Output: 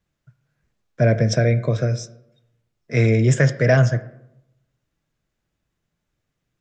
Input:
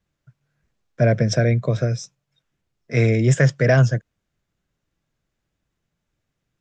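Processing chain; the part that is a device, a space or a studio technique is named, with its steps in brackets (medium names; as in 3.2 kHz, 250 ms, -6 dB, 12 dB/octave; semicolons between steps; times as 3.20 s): filtered reverb send (on a send: high-pass 160 Hz + low-pass 3.8 kHz + reverberation RT60 0.85 s, pre-delay 4 ms, DRR 10.5 dB)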